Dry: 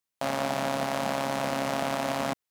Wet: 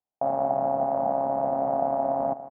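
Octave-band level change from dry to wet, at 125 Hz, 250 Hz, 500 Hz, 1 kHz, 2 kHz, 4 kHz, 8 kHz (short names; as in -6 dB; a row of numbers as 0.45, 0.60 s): -3.5 dB, -1.5 dB, +5.5 dB, +5.0 dB, under -15 dB, under -40 dB, under -40 dB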